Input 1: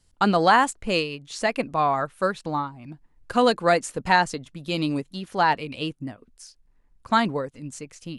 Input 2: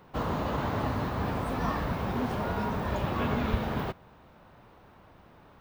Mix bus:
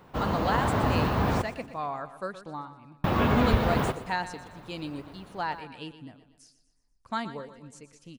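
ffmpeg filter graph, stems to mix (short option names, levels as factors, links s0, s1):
-filter_complex "[0:a]volume=0.266,asplit=2[s0][s1];[s1]volume=0.224[s2];[1:a]dynaudnorm=f=250:g=5:m=1.58,volume=1.19,asplit=3[s3][s4][s5];[s3]atrim=end=1.42,asetpts=PTS-STARTPTS,afade=t=out:st=1.416:d=0.004:c=hsin[s6];[s4]atrim=start=1.42:end=3.04,asetpts=PTS-STARTPTS,volume=0[s7];[s5]atrim=start=3.04,asetpts=PTS-STARTPTS,afade=t=in:d=0.004:c=hsin[s8];[s6][s7][s8]concat=n=3:v=0:a=1,asplit=2[s9][s10];[s10]volume=0.158[s11];[s2][s11]amix=inputs=2:normalize=0,aecho=0:1:121|242|363|484|605|726|847:1|0.49|0.24|0.118|0.0576|0.0282|0.0138[s12];[s0][s9][s12]amix=inputs=3:normalize=0"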